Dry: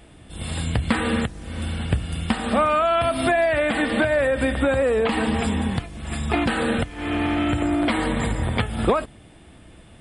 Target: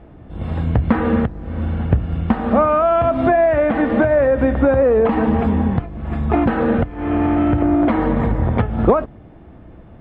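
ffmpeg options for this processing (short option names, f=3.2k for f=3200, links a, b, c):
-af "lowpass=1.1k,volume=6.5dB"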